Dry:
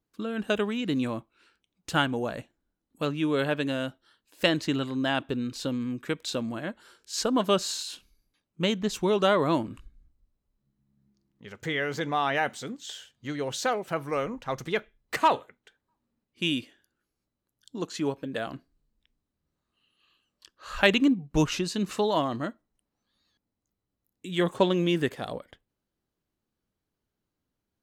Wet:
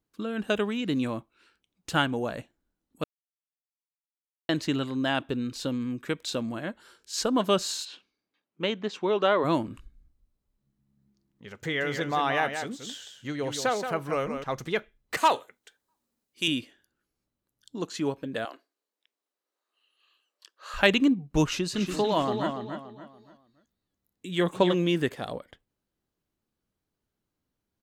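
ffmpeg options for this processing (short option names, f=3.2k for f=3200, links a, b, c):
-filter_complex "[0:a]asplit=3[a][b][c];[a]afade=t=out:st=7.84:d=0.02[d];[b]highpass=280,lowpass=3.5k,afade=t=in:st=7.84:d=0.02,afade=t=out:st=9.43:d=0.02[e];[c]afade=t=in:st=9.43:d=0.02[f];[d][e][f]amix=inputs=3:normalize=0,asettb=1/sr,asplit=3[g][h][i];[g]atrim=end=11.634[j];[h]atrim=start=11.63:end=14.44,asetpts=PTS-STARTPTS,afade=t=in:d=0.004:c=qsin,afade=t=out:st=2.806:d=0.004:c=qsin,aecho=1:1:175:0.422,atrim=end_sample=123921[k];[i]atrim=start=14.436[l];[j][k]acrossfade=d=0.004:c1=hsin:c2=qsin[m];[m][l]acrossfade=d=0.004:c1=qsin:c2=hsin,asettb=1/sr,asplit=3[n][o][p];[n]atrim=end=15.174[q];[o]atrim=start=15.17:end=16.48,asetpts=PTS-STARTPTS,afade=t=in:d=0.004:c=qsin,afade=t=out:st=1.306:d=0.004:c=qsin,bass=f=250:g=-9,treble=f=4k:g=10[r];[p]atrim=start=16.476[s];[q][r]acrossfade=d=0.004:c1=hsin:c2=qsin[t];[t][s]acrossfade=d=0.004:c1=qsin:c2=hsin,asettb=1/sr,asplit=3[u][v][w];[u]atrim=end=18.454[x];[v]atrim=start=18.45:end=20.74,asetpts=PTS-STARTPTS,afade=t=in:d=0.004:c=qsin,afade=t=out:st=2.286:d=0.004:c=qsin,highpass=f=410:w=0.5412,highpass=f=410:w=1.3066[y];[w]atrim=start=20.736[z];[x][y]acrossfade=d=0.004:c1=hsin:c2=qsin[aa];[aa][z]acrossfade=d=0.004:c1=qsin:c2=hsin,asplit=3[ab][ac][ad];[ab]afade=t=out:st=21.73:d=0.02[ae];[ac]asplit=2[af][ag];[ag]adelay=286,lowpass=f=5k:p=1,volume=-6dB,asplit=2[ah][ai];[ai]adelay=286,lowpass=f=5k:p=1,volume=0.34,asplit=2[aj][ak];[ak]adelay=286,lowpass=f=5k:p=1,volume=0.34,asplit=2[al][am];[am]adelay=286,lowpass=f=5k:p=1,volume=0.34[an];[af][ah][aj][al][an]amix=inputs=5:normalize=0,afade=t=in:st=21.73:d=0.02,afade=t=out:st=24.73:d=0.02[ao];[ad]afade=t=in:st=24.73:d=0.02[ap];[ae][ao][ap]amix=inputs=3:normalize=0,asplit=3[aq][ar][as];[aq]atrim=end=3.04,asetpts=PTS-STARTPTS,afade=t=out:st=3.036:d=0.004:c=hsin[at];[ar]atrim=start=3.04:end=4.49,asetpts=PTS-STARTPTS,volume=0[au];[as]atrim=start=4.49,asetpts=PTS-STARTPTS,afade=t=in:d=0.004:c=hsin[av];[at][au][av]concat=n=3:v=0:a=1"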